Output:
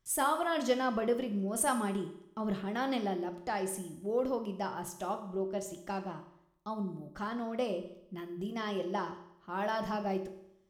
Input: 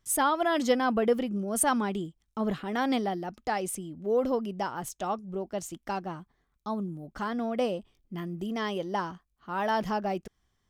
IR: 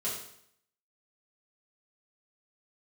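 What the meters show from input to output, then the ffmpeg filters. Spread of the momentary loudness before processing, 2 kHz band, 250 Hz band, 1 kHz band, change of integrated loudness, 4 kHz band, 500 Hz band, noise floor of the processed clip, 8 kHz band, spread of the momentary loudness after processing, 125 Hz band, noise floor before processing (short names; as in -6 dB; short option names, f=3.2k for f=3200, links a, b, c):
12 LU, -4.5 dB, -4.5 dB, -5.0 dB, -4.5 dB, -4.5 dB, -4.0 dB, -64 dBFS, -4.5 dB, 11 LU, -3.5 dB, -76 dBFS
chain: -filter_complex "[0:a]asplit=2[a][b];[1:a]atrim=start_sample=2205,asetrate=38808,aresample=44100[c];[b][c]afir=irnorm=-1:irlink=0,volume=-9dB[d];[a][d]amix=inputs=2:normalize=0,volume=-7dB"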